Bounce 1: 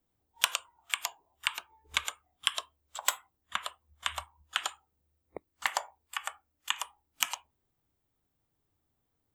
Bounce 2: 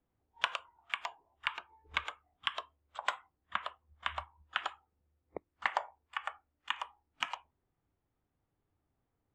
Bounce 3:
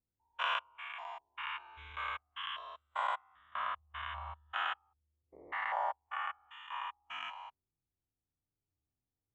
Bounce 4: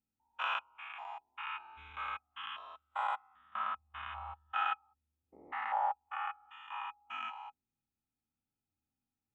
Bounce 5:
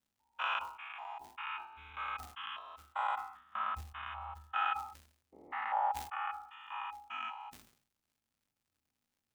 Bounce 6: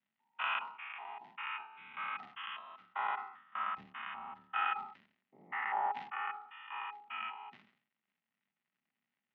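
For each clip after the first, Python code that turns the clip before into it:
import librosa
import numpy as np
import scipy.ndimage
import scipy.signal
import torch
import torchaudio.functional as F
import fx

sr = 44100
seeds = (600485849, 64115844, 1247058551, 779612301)

y1 = scipy.signal.sosfilt(scipy.signal.butter(2, 2200.0, 'lowpass', fs=sr, output='sos'), x)
y2 = fx.spec_steps(y1, sr, hold_ms=200)
y2 = fx.peak_eq(y2, sr, hz=4900.0, db=-4.0, octaves=0.24)
y2 = fx.spectral_expand(y2, sr, expansion=1.5)
y2 = y2 * librosa.db_to_amplitude(5.5)
y3 = fx.small_body(y2, sr, hz=(230.0, 820.0, 1300.0, 2500.0), ring_ms=45, db=14)
y3 = y3 * librosa.db_to_amplitude(-5.0)
y4 = fx.dmg_crackle(y3, sr, seeds[0], per_s=180.0, level_db=-68.0)
y4 = fx.sustainer(y4, sr, db_per_s=99.0)
y5 = fx.octave_divider(y4, sr, octaves=1, level_db=1.0)
y5 = fx.cabinet(y5, sr, low_hz=180.0, low_slope=24, high_hz=3200.0, hz=(200.0, 310.0, 490.0, 1900.0, 2800.0), db=(4, -7, -8, 9, 3))
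y5 = fx.notch(y5, sr, hz=1700.0, q=16.0)
y5 = y5 * librosa.db_to_amplitude(-1.5)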